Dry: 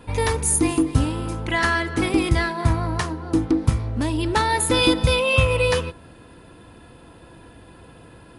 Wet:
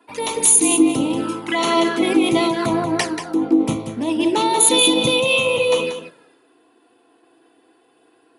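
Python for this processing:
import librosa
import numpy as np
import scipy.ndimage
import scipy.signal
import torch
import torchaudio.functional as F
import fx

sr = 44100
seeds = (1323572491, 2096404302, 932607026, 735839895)

p1 = fx.env_flanger(x, sr, rest_ms=3.1, full_db=-18.5)
p2 = scipy.signal.sosfilt(scipy.signal.butter(4, 210.0, 'highpass', fs=sr, output='sos'), p1)
p3 = fx.over_compress(p2, sr, threshold_db=-28.0, ratio=-1.0)
p4 = p2 + (p3 * 10.0 ** (3.0 / 20.0))
p5 = fx.hum_notches(p4, sr, base_hz=50, count=9)
p6 = p5 + fx.echo_single(p5, sr, ms=185, db=-6.5, dry=0)
y = fx.band_widen(p6, sr, depth_pct=70)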